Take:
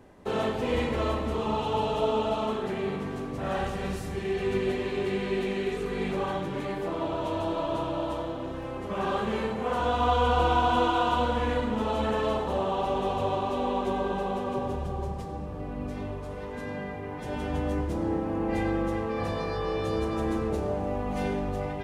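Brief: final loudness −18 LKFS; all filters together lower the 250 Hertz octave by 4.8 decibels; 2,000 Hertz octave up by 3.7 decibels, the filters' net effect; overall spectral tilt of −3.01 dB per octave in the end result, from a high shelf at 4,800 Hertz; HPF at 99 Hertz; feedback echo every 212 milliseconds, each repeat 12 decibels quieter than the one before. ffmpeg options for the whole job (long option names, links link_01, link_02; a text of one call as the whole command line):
ffmpeg -i in.wav -af "highpass=99,equalizer=frequency=250:width_type=o:gain=-6.5,equalizer=frequency=2000:width_type=o:gain=4,highshelf=frequency=4800:gain=6.5,aecho=1:1:212|424|636:0.251|0.0628|0.0157,volume=12dB" out.wav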